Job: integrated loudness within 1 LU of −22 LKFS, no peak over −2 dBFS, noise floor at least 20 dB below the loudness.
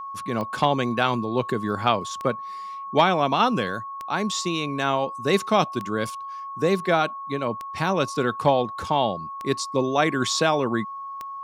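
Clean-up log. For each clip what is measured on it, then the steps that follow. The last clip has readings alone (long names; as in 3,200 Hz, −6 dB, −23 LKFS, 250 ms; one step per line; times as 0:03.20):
number of clicks 7; interfering tone 1,100 Hz; level of the tone −32 dBFS; integrated loudness −24.0 LKFS; sample peak −6.0 dBFS; target loudness −22.0 LKFS
→ click removal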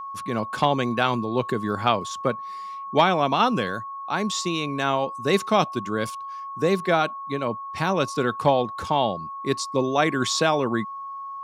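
number of clicks 0; interfering tone 1,100 Hz; level of the tone −32 dBFS
→ notch filter 1,100 Hz, Q 30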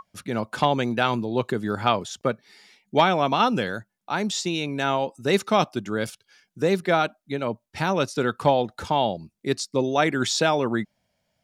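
interfering tone none found; integrated loudness −24.5 LKFS; sample peak −6.5 dBFS; target loudness −22.0 LKFS
→ level +2.5 dB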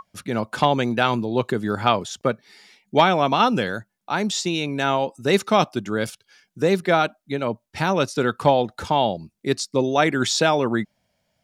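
integrated loudness −22.0 LKFS; sample peak −4.0 dBFS; background noise floor −75 dBFS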